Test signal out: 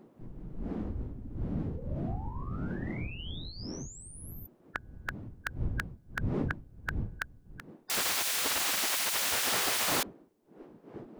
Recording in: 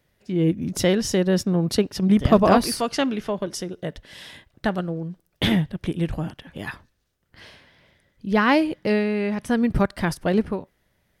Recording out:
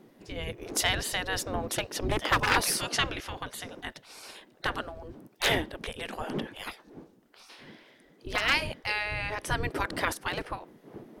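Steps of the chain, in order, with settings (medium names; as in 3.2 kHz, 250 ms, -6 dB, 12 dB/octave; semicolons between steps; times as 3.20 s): one-sided wavefolder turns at -13 dBFS; wind noise 100 Hz -33 dBFS; peaking EQ 300 Hz +2.5 dB 0.72 oct; spectral gate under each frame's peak -15 dB weak; trim +2.5 dB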